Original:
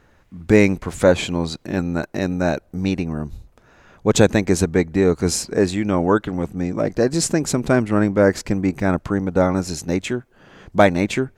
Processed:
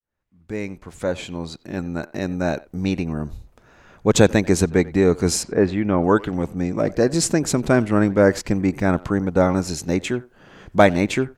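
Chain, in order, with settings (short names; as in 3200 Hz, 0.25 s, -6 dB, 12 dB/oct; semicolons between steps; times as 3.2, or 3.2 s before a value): opening faded in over 3.29 s; 5.43–6.04 LPF 2500 Hz 12 dB/oct; speakerphone echo 90 ms, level -20 dB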